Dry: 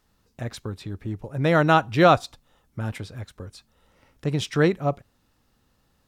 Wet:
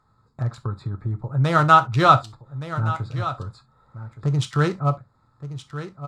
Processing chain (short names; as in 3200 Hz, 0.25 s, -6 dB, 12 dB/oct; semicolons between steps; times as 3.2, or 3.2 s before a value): Wiener smoothing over 15 samples; ten-band EQ 125 Hz +11 dB, 1000 Hz +9 dB, 4000 Hz +8 dB, 8000 Hz +12 dB; on a send: echo 1.17 s -16.5 dB; on the sum: non-linear reverb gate 90 ms falling, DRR 7.5 dB; in parallel at +2 dB: compressor, threshold -24 dBFS, peak gain reduction 18 dB; on the sum: bell 1300 Hz +10.5 dB 0.27 oct; gain -9.5 dB